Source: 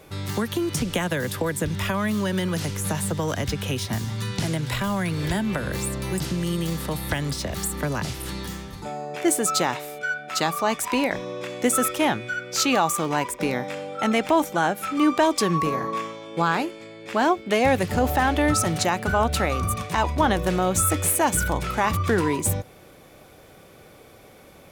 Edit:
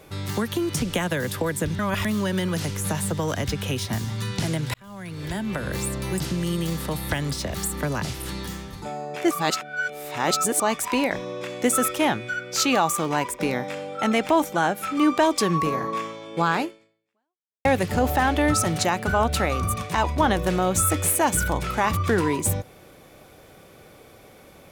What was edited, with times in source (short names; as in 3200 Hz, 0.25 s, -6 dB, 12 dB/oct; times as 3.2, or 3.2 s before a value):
1.79–2.05 reverse
4.74–5.77 fade in
9.31–10.6 reverse
16.64–17.65 fade out exponential